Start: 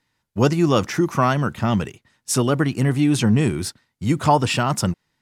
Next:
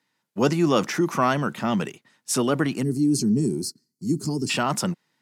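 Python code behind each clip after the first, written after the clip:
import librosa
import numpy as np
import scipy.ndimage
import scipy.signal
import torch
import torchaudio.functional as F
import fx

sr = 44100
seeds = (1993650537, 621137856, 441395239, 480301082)

y = fx.spec_box(x, sr, start_s=2.83, length_s=1.67, low_hz=440.0, high_hz=4100.0, gain_db=-25)
y = scipy.signal.sosfilt(scipy.signal.butter(4, 160.0, 'highpass', fs=sr, output='sos'), y)
y = fx.transient(y, sr, attack_db=-1, sustain_db=3)
y = F.gain(torch.from_numpy(y), -2.0).numpy()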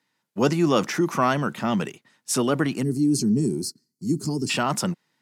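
y = x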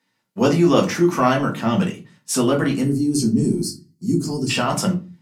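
y = fx.room_shoebox(x, sr, seeds[0], volume_m3=120.0, walls='furnished', distance_m=1.6)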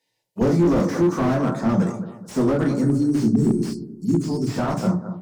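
y = fx.env_phaser(x, sr, low_hz=220.0, high_hz=2900.0, full_db=-23.0)
y = fx.echo_bbd(y, sr, ms=215, stages=2048, feedback_pct=34, wet_db=-12)
y = fx.slew_limit(y, sr, full_power_hz=65.0)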